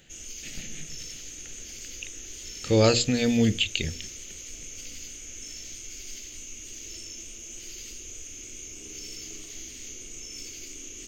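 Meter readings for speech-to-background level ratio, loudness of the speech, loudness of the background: 15.0 dB, -23.5 LUFS, -38.5 LUFS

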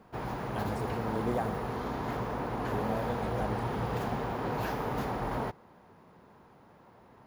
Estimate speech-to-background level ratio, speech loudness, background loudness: -4.0 dB, -38.5 LUFS, -34.5 LUFS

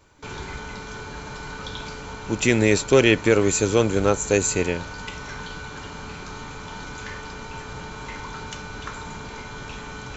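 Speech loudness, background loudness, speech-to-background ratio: -20.0 LUFS, -35.5 LUFS, 15.5 dB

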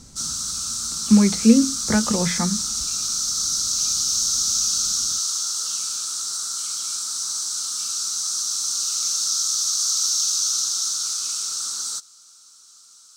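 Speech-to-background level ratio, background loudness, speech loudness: 2.0 dB, -21.5 LUFS, -19.5 LUFS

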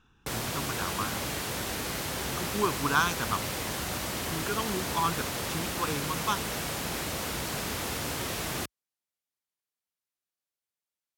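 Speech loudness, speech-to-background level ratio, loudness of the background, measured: -33.0 LUFS, -1.0 dB, -32.0 LUFS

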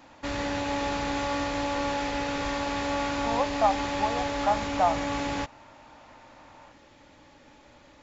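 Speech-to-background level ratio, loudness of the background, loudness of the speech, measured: 1.0 dB, -30.0 LUFS, -29.0 LUFS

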